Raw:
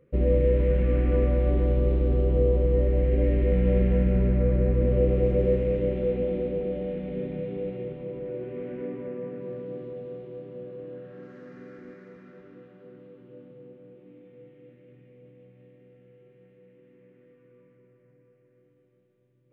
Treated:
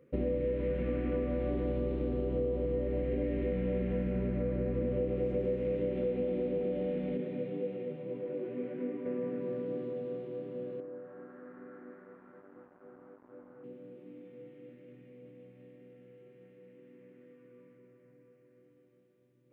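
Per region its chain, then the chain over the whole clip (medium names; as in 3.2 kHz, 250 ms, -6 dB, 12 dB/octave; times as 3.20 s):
7.17–9.06 s: high-pass 91 Hz + detune thickener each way 29 cents
10.80–13.64 s: tilt EQ +3.5 dB/octave + small samples zeroed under -53 dBFS + low-pass 1.4 kHz 24 dB/octave
whole clip: high-pass 170 Hz 6 dB/octave; peaking EQ 260 Hz +6.5 dB 0.33 oct; compression, threshold -29 dBFS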